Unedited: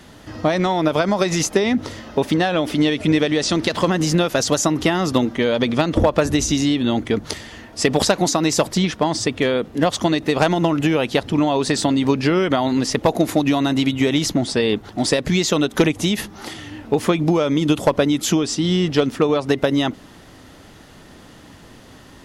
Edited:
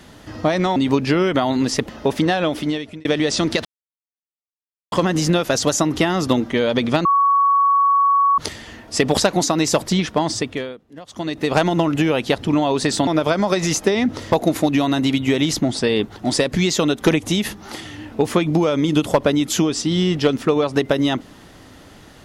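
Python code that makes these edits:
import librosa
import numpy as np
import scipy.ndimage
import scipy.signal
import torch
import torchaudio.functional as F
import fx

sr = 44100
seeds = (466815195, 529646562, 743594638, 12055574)

y = fx.edit(x, sr, fx.swap(start_s=0.76, length_s=1.25, other_s=11.92, other_length_s=1.13),
    fx.fade_out_span(start_s=2.56, length_s=0.61),
    fx.insert_silence(at_s=3.77, length_s=1.27),
    fx.bleep(start_s=5.9, length_s=1.33, hz=1120.0, db=-12.0),
    fx.fade_down_up(start_s=9.15, length_s=1.25, db=-20.5, fade_s=0.48), tone=tone)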